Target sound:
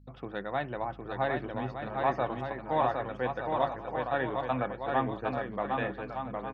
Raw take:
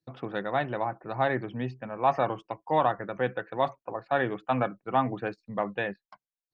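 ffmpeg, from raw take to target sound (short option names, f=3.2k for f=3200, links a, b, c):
-af "aeval=exprs='val(0)+0.00316*(sin(2*PI*50*n/s)+sin(2*PI*2*50*n/s)/2+sin(2*PI*3*50*n/s)/3+sin(2*PI*4*50*n/s)/4+sin(2*PI*5*50*n/s)/5)':c=same,aecho=1:1:760|1216|1490|1654|1752:0.631|0.398|0.251|0.158|0.1,volume=-4.5dB"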